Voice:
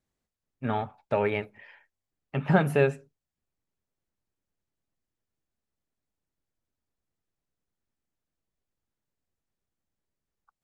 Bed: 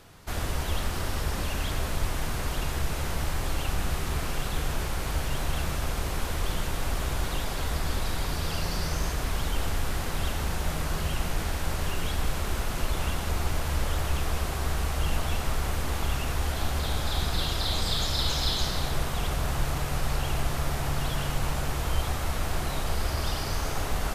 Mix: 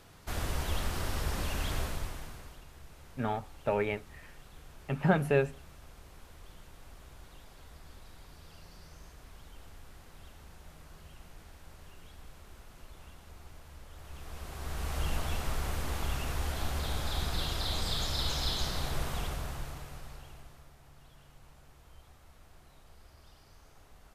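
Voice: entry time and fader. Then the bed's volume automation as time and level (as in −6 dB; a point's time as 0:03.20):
2.55 s, −4.0 dB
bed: 0:01.80 −4 dB
0:02.65 −23 dB
0:13.89 −23 dB
0:14.96 −5.5 dB
0:19.16 −5.5 dB
0:20.75 −28.5 dB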